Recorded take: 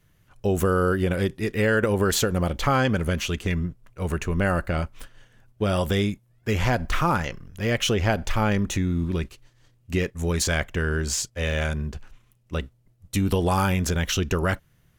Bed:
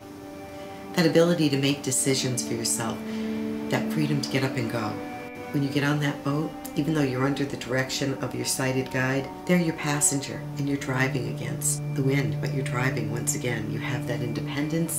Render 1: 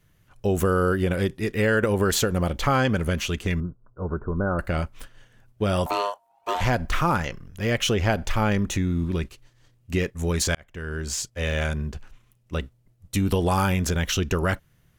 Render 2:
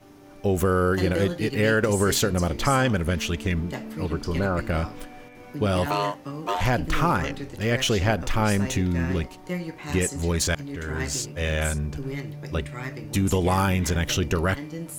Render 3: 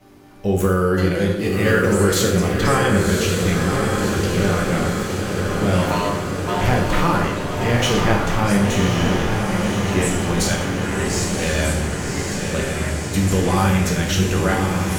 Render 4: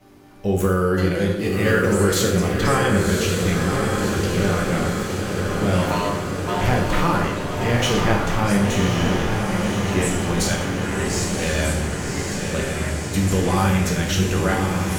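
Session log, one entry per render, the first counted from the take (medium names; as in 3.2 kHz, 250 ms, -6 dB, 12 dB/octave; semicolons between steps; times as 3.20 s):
3.60–4.59 s: rippled Chebyshev low-pass 1.5 kHz, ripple 3 dB; 5.86–6.61 s: ring modulator 810 Hz; 10.55–11.68 s: fade in equal-power
add bed -8.5 dB
echo that smears into a reverb 1095 ms, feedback 69%, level -3.5 dB; plate-style reverb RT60 0.83 s, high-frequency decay 0.85×, DRR -0.5 dB
trim -1.5 dB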